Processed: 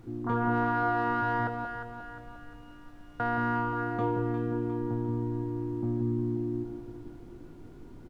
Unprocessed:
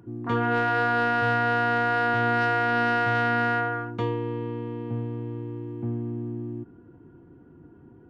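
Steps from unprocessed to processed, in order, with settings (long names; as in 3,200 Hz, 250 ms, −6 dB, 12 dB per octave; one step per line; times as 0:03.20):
high shelf with overshoot 1,700 Hz −8 dB, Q 1.5
in parallel at −1.5 dB: brickwall limiter −22.5 dBFS, peak gain reduction 9.5 dB
0:01.47–0:03.20: on the sum: tuned comb filter 150 Hz, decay 1.8 s, mix 100%
background noise brown −44 dBFS
double-tracking delay 20 ms −11 dB
delay that swaps between a low-pass and a high-pass 177 ms, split 880 Hz, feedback 66%, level −3.5 dB
level −7.5 dB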